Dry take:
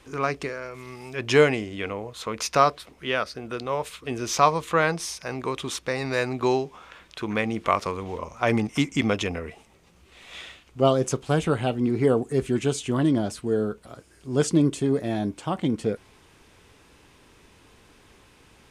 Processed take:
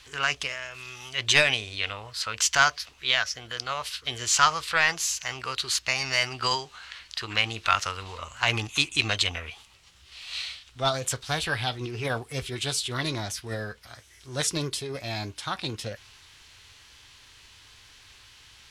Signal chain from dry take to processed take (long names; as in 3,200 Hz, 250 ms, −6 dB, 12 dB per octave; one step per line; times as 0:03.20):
formants moved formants +3 semitones
mid-hump overdrive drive 9 dB, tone 2,300 Hz, clips at −2 dBFS
drawn EQ curve 110 Hz 0 dB, 170 Hz −13 dB, 470 Hz −18 dB, 5,200 Hz +7 dB, 12,000 Hz +2 dB
level +4.5 dB